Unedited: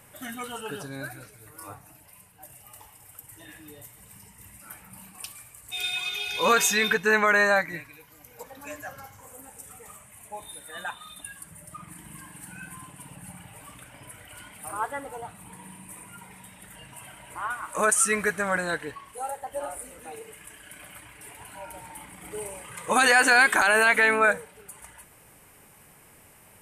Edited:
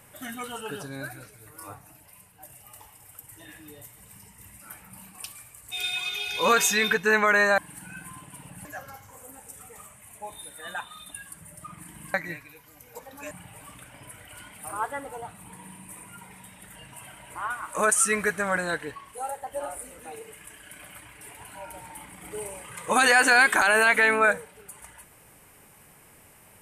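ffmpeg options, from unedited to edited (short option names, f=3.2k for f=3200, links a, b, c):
-filter_complex "[0:a]asplit=5[a][b][c][d][e];[a]atrim=end=7.582[f];[b]atrim=start=12.238:end=13.312[g];[c]atrim=start=8.748:end=12.242[h];[d]atrim=start=7.578:end=8.752[i];[e]atrim=start=13.308[j];[f][g]acrossfade=d=0.004:c1=hsin:c2=hsin[k];[k][h]acrossfade=d=0.004:c1=hsin:c2=hsin[l];[l][i]acrossfade=d=0.004:c1=hsin:c2=hsin[m];[m][j]acrossfade=d=0.004:c1=hsin:c2=hsin"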